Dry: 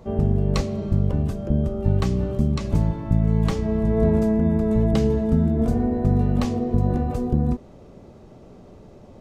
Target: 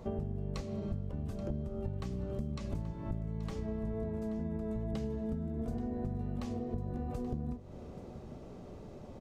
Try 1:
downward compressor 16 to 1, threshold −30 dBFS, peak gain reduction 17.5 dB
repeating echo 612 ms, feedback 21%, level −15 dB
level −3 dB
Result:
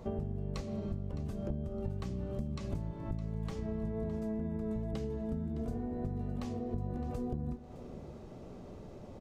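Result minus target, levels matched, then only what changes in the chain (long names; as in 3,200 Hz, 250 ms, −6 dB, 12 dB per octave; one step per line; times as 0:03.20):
echo 218 ms early
change: repeating echo 830 ms, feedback 21%, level −15 dB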